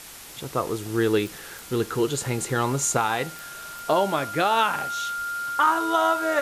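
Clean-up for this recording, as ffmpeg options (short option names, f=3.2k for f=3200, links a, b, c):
-af "adeclick=t=4,bandreject=f=1.4k:w=30,afwtdn=0.0089"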